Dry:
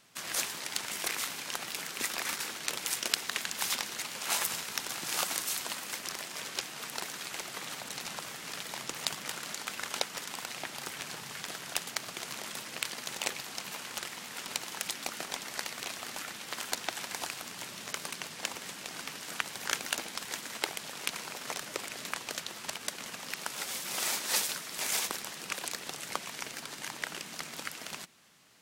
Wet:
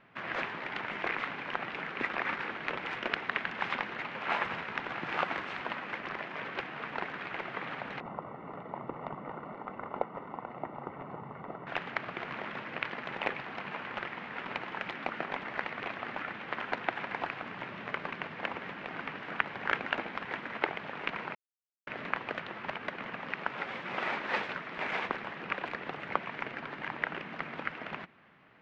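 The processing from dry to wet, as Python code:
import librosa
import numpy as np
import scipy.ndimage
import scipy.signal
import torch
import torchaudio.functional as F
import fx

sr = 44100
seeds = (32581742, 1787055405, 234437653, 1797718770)

y = fx.savgol(x, sr, points=65, at=(8.0, 11.67))
y = fx.edit(y, sr, fx.silence(start_s=21.35, length_s=0.52), tone=tone)
y = scipy.signal.sosfilt(scipy.signal.butter(4, 2300.0, 'lowpass', fs=sr, output='sos'), y)
y = y * 10.0 ** (5.5 / 20.0)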